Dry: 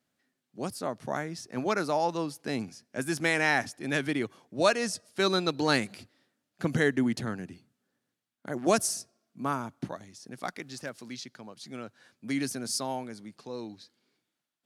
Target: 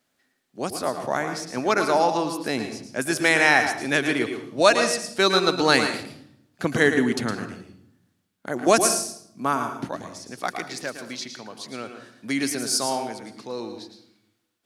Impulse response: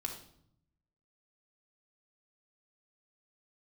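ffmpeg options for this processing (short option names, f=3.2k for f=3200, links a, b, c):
-filter_complex "[0:a]equalizer=f=140:t=o:w=2.2:g=-7,asplit=2[a][b];[1:a]atrim=start_sample=2205,adelay=111[c];[b][c]afir=irnorm=-1:irlink=0,volume=-6.5dB[d];[a][d]amix=inputs=2:normalize=0,volume=8dB"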